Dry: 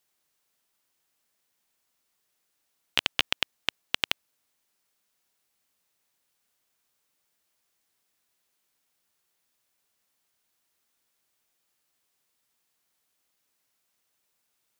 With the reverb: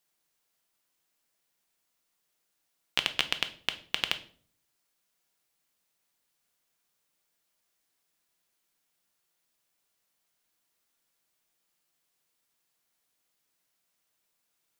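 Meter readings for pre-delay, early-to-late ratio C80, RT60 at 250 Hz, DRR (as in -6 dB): 3 ms, 20.0 dB, 0.70 s, 8.5 dB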